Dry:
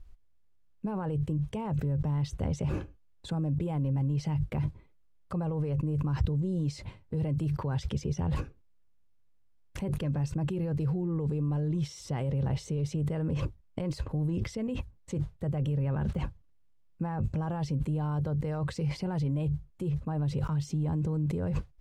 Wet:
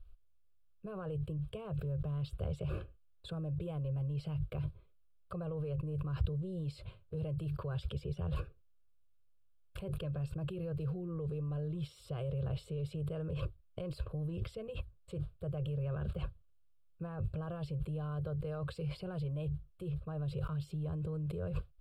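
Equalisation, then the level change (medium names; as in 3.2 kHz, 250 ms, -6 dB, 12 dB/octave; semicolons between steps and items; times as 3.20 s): static phaser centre 1.3 kHz, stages 8; -3.5 dB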